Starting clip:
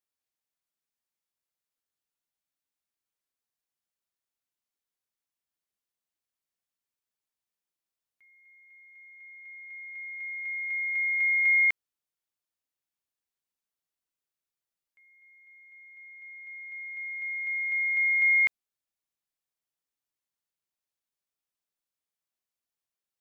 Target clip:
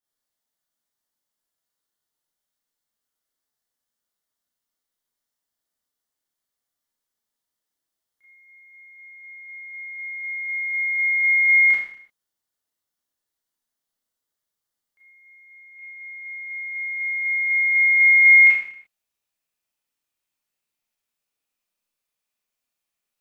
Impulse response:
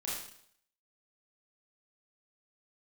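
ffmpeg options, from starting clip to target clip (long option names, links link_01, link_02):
-filter_complex "[0:a]asetnsamples=nb_out_samples=441:pad=0,asendcmd='15.79 equalizer g 5.5',equalizer=frequency=2500:width=5.4:gain=-9.5[link_01];[1:a]atrim=start_sample=2205,afade=type=out:start_time=0.44:duration=0.01,atrim=end_sample=19845[link_02];[link_01][link_02]afir=irnorm=-1:irlink=0,volume=4.5dB"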